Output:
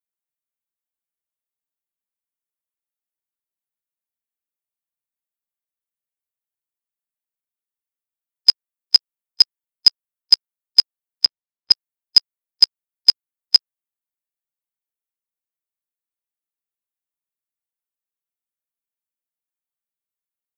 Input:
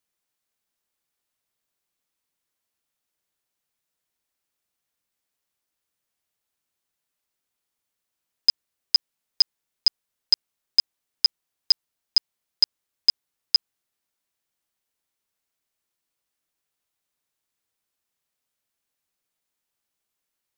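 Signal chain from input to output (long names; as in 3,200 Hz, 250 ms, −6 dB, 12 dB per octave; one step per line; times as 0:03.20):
spectral dynamics exaggerated over time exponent 1.5
0:11.25–0:11.71: high-frequency loss of the air 310 metres
level +7.5 dB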